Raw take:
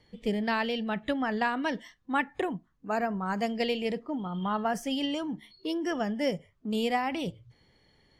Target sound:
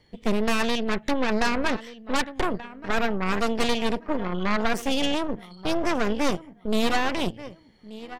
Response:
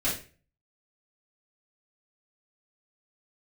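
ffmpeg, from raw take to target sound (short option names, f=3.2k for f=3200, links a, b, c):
-filter_complex "[0:a]asettb=1/sr,asplit=3[a][b][c];[a]atrim=end=1.274[d];[b]atrim=start=1.27:end=1.7,asetpts=PTS-STARTPTS,afade=t=in:d=0.004:c=qsin,afade=t=out:st=0.426:d=0.004:c=qsin,asuperstop=centerf=3300:order=4:qfactor=2.5[e];[c]atrim=start=1.696[f];[d][e]acrossfade=d=0.004:c1=hsin:c2=qsin[g];[g][f]acrossfade=d=0.004:c1=qsin:c2=hsin,asplit=2[h][i];[i]adelay=1181,lowpass=f=4.4k:p=1,volume=-15dB,asplit=2[j][k];[k]adelay=1181,lowpass=f=4.4k:p=1,volume=0.3,asplit=2[l][m];[m]adelay=1181,lowpass=f=4.4k:p=1,volume=0.3[n];[h][j][l][n]amix=inputs=4:normalize=0,asplit=2[o][p];[p]asoftclip=type=tanh:threshold=-30dB,volume=-6dB[q];[o][q]amix=inputs=2:normalize=0,aeval=exprs='0.2*(cos(1*acos(clip(val(0)/0.2,-1,1)))-cos(1*PI/2))+0.0794*(cos(6*acos(clip(val(0)/0.2,-1,1)))-cos(6*PI/2))':c=same,volume=-1dB"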